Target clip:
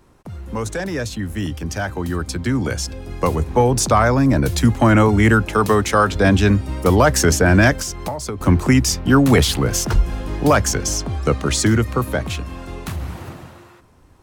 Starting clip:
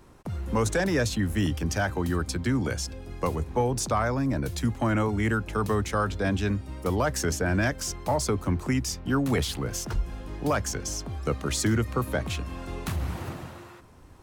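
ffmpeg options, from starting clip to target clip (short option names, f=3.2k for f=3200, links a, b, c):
-filter_complex "[0:a]dynaudnorm=f=550:g=11:m=13dB,asettb=1/sr,asplit=3[a][b][c];[a]atrim=end=5.454[d];[b]atrim=start=5.45:end=6.16,asetpts=PTS-STARTPTS,afade=t=in:d=0.004:c=qsin,afade=t=out:st=0.706:d=0.004:c=qsin,lowshelf=f=150:g=-9[e];[c]atrim=start=6.156[f];[d][e]acrossfade=d=0.004:c1=hsin:c2=qsin[g];[g][f]acrossfade=d=0.004:c1=qsin:c2=hsin,asettb=1/sr,asplit=3[h][i][j];[h]atrim=end=7.744[k];[i]atrim=start=7.74:end=8.41,asetpts=PTS-STARTPTS,afade=t=in:d=0.004:c=qsin,afade=t=out:st=0.666:d=0.004:c=qsin,acompressor=threshold=-23dB:ratio=12[l];[j]atrim=start=8.406[m];[k][l]acrossfade=d=0.004:c1=hsin:c2=qsin[n];[n][m]acrossfade=d=0.004:c1=qsin:c2=hsin,asettb=1/sr,asplit=3[o][p][q];[o]atrim=end=10.984[r];[p]atrim=start=10.98:end=11.67,asetpts=PTS-STARTPTS,afade=t=in:d=0.004:c=qsin,afade=t=out:st=0.686:d=0.004:c=qsin,equalizer=f=13k:w=2.8:g=-12[s];[q]atrim=start=11.666[t];[r][s]acrossfade=d=0.004:c1=hsin:c2=qsin[u];[u][t]acrossfade=d=0.004:c1=qsin:c2=hsin"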